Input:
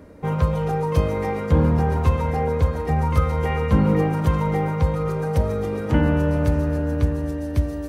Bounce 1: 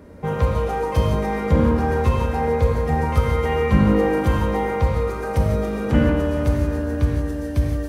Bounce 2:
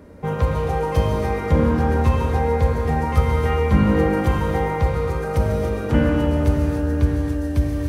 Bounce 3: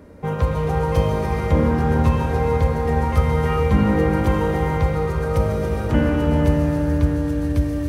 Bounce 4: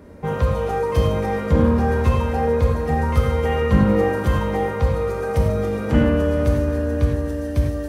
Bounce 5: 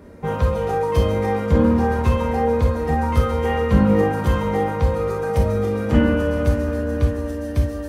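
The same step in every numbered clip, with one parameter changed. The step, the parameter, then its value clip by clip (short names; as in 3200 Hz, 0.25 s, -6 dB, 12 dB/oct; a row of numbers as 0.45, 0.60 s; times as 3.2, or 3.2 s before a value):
non-linear reverb, gate: 200, 340, 520, 130, 80 ms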